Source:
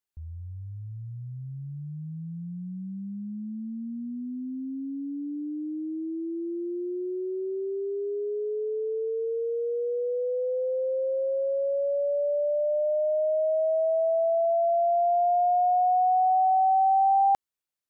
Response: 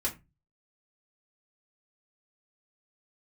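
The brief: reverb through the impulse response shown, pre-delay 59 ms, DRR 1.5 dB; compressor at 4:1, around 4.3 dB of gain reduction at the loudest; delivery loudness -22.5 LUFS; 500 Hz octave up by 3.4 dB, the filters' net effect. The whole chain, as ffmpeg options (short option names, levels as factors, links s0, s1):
-filter_complex "[0:a]equalizer=f=500:t=o:g=4.5,acompressor=threshold=0.0631:ratio=4,asplit=2[s0][s1];[1:a]atrim=start_sample=2205,adelay=59[s2];[s1][s2]afir=irnorm=-1:irlink=0,volume=0.473[s3];[s0][s3]amix=inputs=2:normalize=0,volume=1.33"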